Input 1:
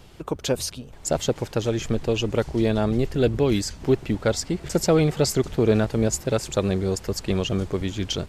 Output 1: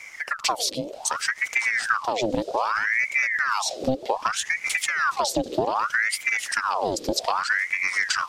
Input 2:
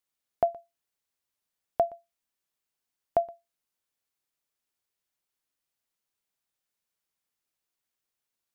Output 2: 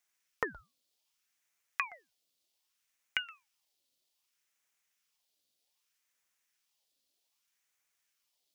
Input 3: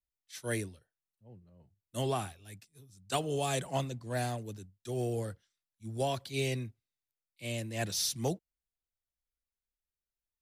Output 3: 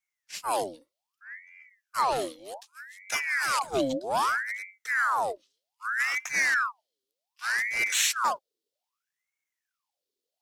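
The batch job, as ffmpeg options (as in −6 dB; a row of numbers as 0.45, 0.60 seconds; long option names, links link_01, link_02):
-af "acompressor=threshold=-27dB:ratio=6,equalizer=frequency=125:width_type=o:width=1:gain=9,equalizer=frequency=500:width_type=o:width=1:gain=-9,equalizer=frequency=1000:width_type=o:width=1:gain=-6,equalizer=frequency=2000:width_type=o:width=1:gain=-9,equalizer=frequency=4000:width_type=o:width=1:gain=10,aeval=exprs='val(0)*sin(2*PI*1300*n/s+1300*0.7/0.64*sin(2*PI*0.64*n/s))':channel_layout=same,volume=6.5dB"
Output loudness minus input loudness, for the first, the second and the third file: 0.0, −7.5, +8.0 LU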